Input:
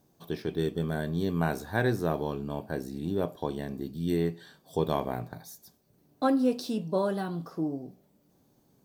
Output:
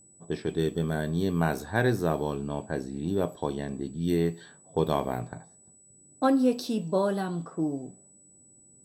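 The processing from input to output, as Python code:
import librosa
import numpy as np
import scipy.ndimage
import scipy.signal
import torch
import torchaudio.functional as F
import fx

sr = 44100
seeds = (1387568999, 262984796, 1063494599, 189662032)

y = fx.env_lowpass(x, sr, base_hz=490.0, full_db=-27.0)
y = y + 10.0 ** (-57.0 / 20.0) * np.sin(2.0 * np.pi * 7900.0 * np.arange(len(y)) / sr)
y = y * 10.0 ** (2.0 / 20.0)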